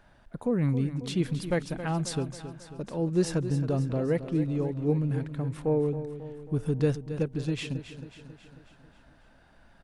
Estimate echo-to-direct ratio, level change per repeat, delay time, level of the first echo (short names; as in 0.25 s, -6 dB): -10.0 dB, -5.0 dB, 0.271 s, -11.5 dB